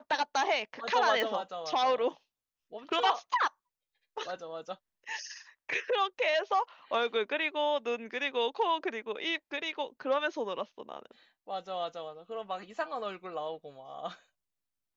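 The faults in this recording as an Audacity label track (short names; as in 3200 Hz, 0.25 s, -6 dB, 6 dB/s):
1.200000	1.200000	pop -18 dBFS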